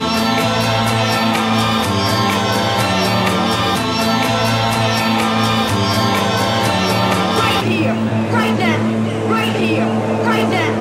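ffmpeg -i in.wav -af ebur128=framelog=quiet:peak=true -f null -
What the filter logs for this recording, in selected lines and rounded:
Integrated loudness:
  I:         -15.3 LUFS
  Threshold: -25.3 LUFS
Loudness range:
  LRA:         0.9 LU
  Threshold: -35.2 LUFS
  LRA low:   -15.9 LUFS
  LRA high:  -15.0 LUFS
True peak:
  Peak:       -2.2 dBFS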